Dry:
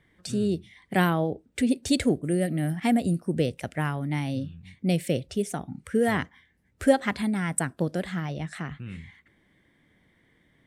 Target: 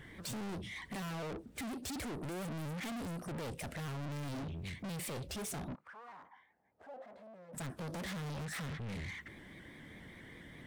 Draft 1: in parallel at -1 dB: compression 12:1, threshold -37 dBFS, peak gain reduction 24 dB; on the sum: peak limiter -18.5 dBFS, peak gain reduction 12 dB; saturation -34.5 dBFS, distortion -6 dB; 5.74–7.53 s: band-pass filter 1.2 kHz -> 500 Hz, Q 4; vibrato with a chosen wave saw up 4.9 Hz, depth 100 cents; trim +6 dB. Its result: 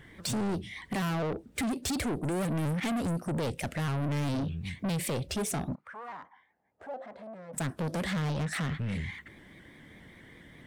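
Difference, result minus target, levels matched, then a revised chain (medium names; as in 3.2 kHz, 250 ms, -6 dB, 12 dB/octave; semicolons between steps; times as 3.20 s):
saturation: distortion -4 dB
in parallel at -1 dB: compression 12:1, threshold -37 dBFS, peak gain reduction 24 dB; on the sum: peak limiter -18.5 dBFS, peak gain reduction 12 dB; saturation -46 dBFS, distortion -2 dB; 5.74–7.53 s: band-pass filter 1.2 kHz -> 500 Hz, Q 4; vibrato with a chosen wave saw up 4.9 Hz, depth 100 cents; trim +6 dB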